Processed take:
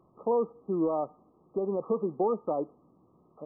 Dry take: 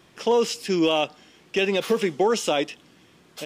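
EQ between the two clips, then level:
linear-phase brick-wall low-pass 1,300 Hz
−6.5 dB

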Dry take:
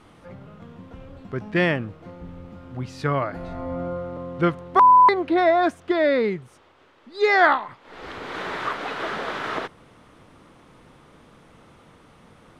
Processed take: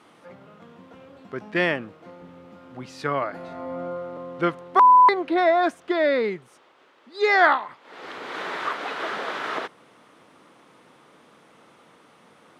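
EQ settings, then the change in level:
high-pass filter 180 Hz 12 dB per octave
low-shelf EQ 250 Hz −6.5 dB
0.0 dB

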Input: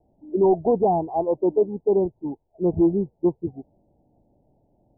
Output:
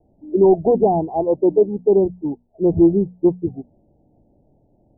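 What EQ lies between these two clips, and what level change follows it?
Bessel low-pass filter 610 Hz, order 2
mains-hum notches 60/120/180/240 Hz
+6.5 dB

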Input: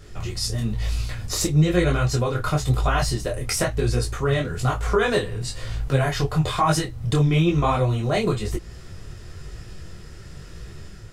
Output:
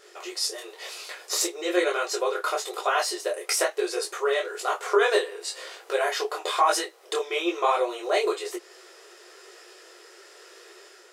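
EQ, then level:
linear-phase brick-wall high-pass 340 Hz
0.0 dB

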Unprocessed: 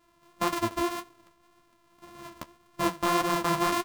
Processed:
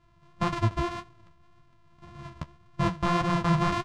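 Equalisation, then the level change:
high-frequency loss of the air 110 metres
low shelf with overshoot 200 Hz +12.5 dB, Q 1.5
0.0 dB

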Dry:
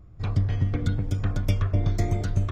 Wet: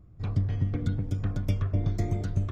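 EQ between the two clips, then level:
parametric band 190 Hz +6 dB 2.8 octaves
−7.5 dB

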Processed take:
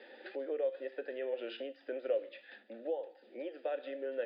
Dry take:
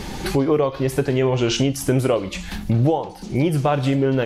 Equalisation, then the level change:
formant filter e
Chebyshev high-pass with heavy ripple 220 Hz, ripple 3 dB
Chebyshev low-pass with heavy ripple 5,000 Hz, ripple 9 dB
+1.0 dB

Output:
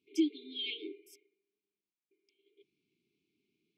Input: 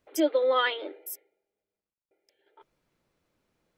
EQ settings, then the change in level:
dynamic equaliser 1,300 Hz, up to −8 dB, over −39 dBFS, Q 0.83
band-pass filter 220–3,600 Hz
linear-phase brick-wall band-stop 440–2,100 Hz
0.0 dB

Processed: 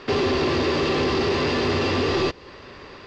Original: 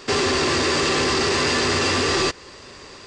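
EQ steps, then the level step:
low-pass filter 4,300 Hz 12 dB per octave
dynamic equaliser 1,600 Hz, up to −7 dB, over −38 dBFS, Q 1
high-frequency loss of the air 120 metres
+1.5 dB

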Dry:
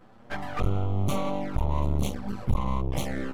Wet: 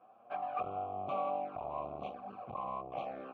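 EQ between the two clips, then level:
formant filter a
high-pass filter 77 Hz
high-frequency loss of the air 290 metres
+5.5 dB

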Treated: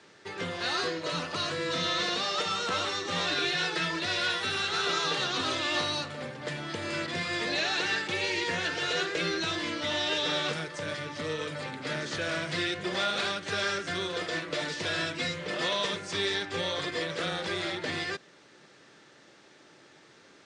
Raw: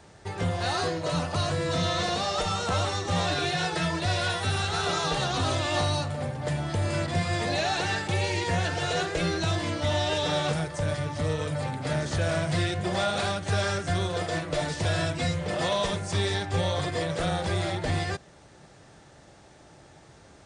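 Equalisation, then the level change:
band-pass filter 330–5,100 Hz
parametric band 730 Hz −12 dB 1 octave
+3.0 dB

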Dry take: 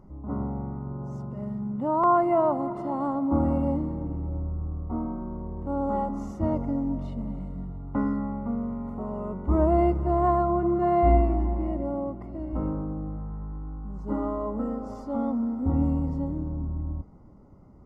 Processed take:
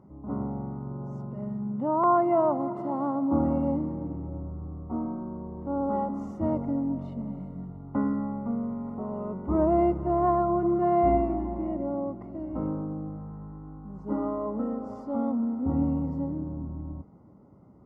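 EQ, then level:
high-pass filter 110 Hz 12 dB per octave
high-shelf EQ 2,400 Hz −10 dB
0.0 dB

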